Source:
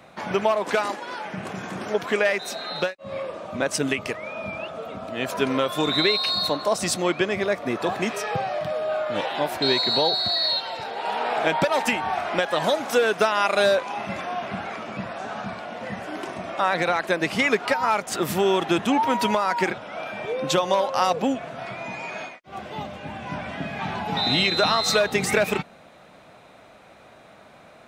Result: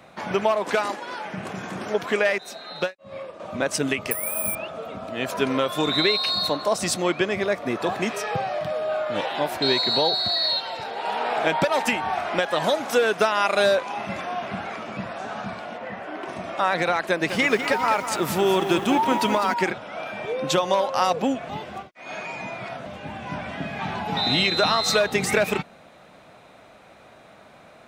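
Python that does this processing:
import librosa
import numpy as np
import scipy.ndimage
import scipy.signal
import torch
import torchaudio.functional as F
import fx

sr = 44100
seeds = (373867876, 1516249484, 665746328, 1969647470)

y = fx.upward_expand(x, sr, threshold_db=-37.0, expansion=1.5, at=(2.38, 3.4))
y = fx.resample_bad(y, sr, factor=4, down='filtered', up='zero_stuff', at=(4.11, 4.55))
y = fx.bass_treble(y, sr, bass_db=-8, treble_db=-14, at=(15.76, 16.27), fade=0.02)
y = fx.echo_crushed(y, sr, ms=202, feedback_pct=55, bits=7, wet_db=-9.0, at=(17.08, 19.54))
y = fx.edit(y, sr, fx.reverse_span(start_s=21.49, length_s=1.37), tone=tone)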